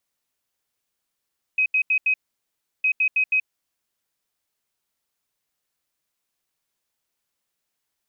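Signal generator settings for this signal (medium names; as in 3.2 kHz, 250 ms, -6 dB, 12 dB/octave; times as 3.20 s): beep pattern sine 2.53 kHz, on 0.08 s, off 0.08 s, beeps 4, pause 0.70 s, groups 2, -16.5 dBFS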